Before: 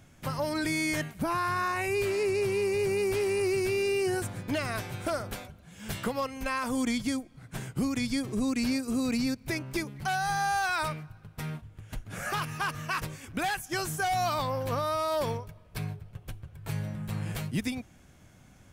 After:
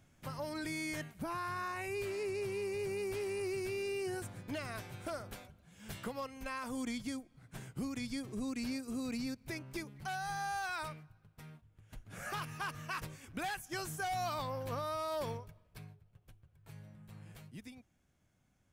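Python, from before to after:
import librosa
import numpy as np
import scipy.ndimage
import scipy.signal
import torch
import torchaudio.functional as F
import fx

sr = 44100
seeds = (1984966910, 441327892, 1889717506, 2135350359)

y = fx.gain(x, sr, db=fx.line((10.75, -10.0), (11.61, -18.0), (12.22, -8.5), (15.49, -8.5), (15.93, -19.0)))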